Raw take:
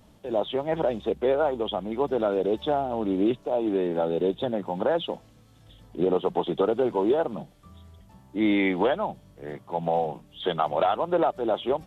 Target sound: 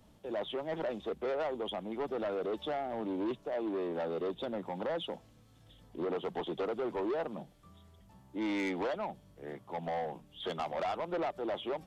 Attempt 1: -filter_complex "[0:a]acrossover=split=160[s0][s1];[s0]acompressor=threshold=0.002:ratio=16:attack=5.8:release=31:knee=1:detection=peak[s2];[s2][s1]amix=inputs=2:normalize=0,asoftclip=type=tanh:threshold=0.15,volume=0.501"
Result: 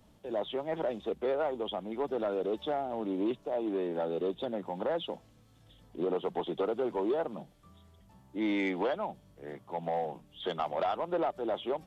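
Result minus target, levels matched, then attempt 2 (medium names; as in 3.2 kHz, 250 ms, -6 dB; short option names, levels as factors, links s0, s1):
saturation: distortion -9 dB
-filter_complex "[0:a]acrossover=split=160[s0][s1];[s0]acompressor=threshold=0.002:ratio=16:attack=5.8:release=31:knee=1:detection=peak[s2];[s2][s1]amix=inputs=2:normalize=0,asoftclip=type=tanh:threshold=0.0631,volume=0.501"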